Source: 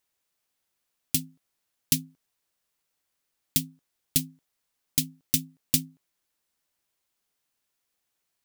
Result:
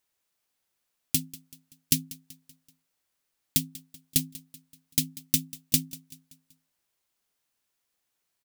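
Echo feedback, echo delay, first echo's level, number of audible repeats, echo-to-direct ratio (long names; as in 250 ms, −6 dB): 48%, 191 ms, −19.0 dB, 3, −18.0 dB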